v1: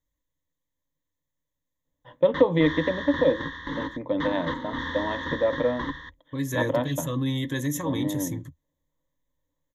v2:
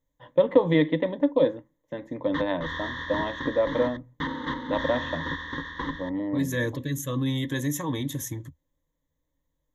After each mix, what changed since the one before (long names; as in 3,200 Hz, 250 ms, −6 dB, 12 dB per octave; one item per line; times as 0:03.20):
first voice: entry −1.85 s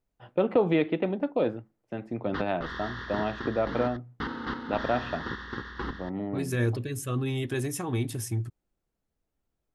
master: remove EQ curve with evenly spaced ripples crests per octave 1.1, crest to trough 16 dB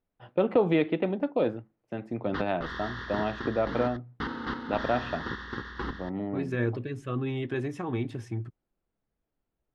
second voice: add band-pass filter 130–2,600 Hz